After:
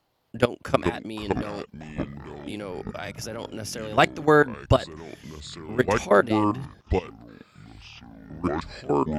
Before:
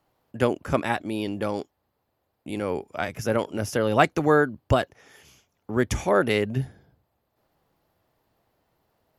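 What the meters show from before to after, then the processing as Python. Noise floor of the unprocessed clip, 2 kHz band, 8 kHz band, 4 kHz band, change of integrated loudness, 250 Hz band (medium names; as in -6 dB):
-76 dBFS, +1.0 dB, 0.0 dB, +2.0 dB, 0.0 dB, +1.0 dB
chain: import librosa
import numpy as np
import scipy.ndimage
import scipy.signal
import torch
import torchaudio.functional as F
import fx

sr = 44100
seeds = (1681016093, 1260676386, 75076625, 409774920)

y = fx.peak_eq(x, sr, hz=4100.0, db=7.0, octaves=1.3)
y = fx.level_steps(y, sr, step_db=19)
y = fx.echo_pitch(y, sr, ms=255, semitones=-6, count=3, db_per_echo=-6.0)
y = y * 10.0 ** (4.0 / 20.0)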